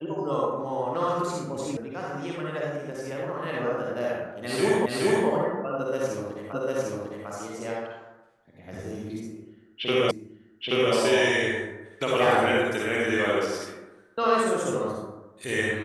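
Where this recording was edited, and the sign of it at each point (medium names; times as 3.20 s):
1.77 s: sound stops dead
4.86 s: repeat of the last 0.42 s
6.53 s: repeat of the last 0.75 s
10.11 s: repeat of the last 0.83 s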